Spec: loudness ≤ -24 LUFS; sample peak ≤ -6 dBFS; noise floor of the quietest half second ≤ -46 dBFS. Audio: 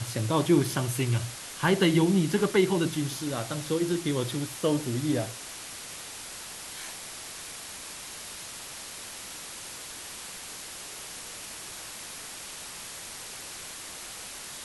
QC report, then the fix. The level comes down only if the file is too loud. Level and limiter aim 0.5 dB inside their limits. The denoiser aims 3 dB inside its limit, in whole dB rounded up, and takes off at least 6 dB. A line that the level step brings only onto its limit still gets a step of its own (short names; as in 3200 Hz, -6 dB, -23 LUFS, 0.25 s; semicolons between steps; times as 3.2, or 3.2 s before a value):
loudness -30.5 LUFS: OK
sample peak -10.5 dBFS: OK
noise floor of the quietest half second -41 dBFS: fail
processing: denoiser 8 dB, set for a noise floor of -41 dBFS